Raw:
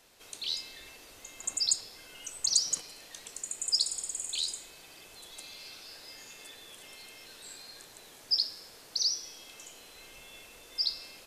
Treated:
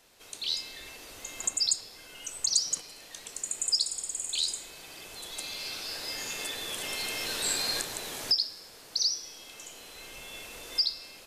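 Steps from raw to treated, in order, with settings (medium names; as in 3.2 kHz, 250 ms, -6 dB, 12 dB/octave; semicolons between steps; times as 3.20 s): recorder AGC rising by 5.2 dB/s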